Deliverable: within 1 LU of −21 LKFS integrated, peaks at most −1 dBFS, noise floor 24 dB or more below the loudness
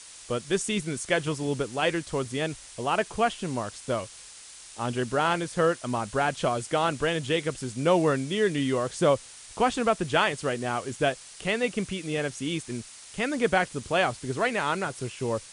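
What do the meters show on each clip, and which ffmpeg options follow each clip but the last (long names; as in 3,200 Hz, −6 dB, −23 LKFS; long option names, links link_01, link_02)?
background noise floor −47 dBFS; target noise floor −52 dBFS; integrated loudness −27.5 LKFS; sample peak −9.5 dBFS; target loudness −21.0 LKFS
→ -af "afftdn=noise_reduction=6:noise_floor=-47"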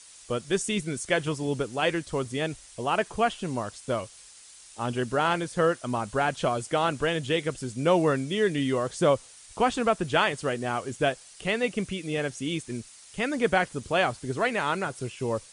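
background noise floor −50 dBFS; target noise floor −52 dBFS
→ -af "afftdn=noise_reduction=6:noise_floor=-50"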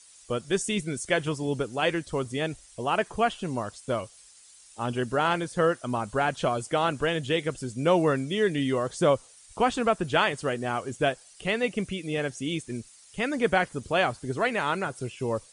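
background noise floor −54 dBFS; integrated loudness −27.5 LKFS; sample peak −9.5 dBFS; target loudness −21.0 LKFS
→ -af "volume=6.5dB"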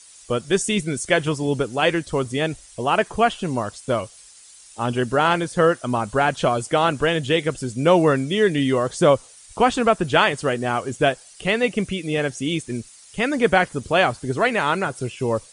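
integrated loudness −21.0 LKFS; sample peak −3.0 dBFS; background noise floor −47 dBFS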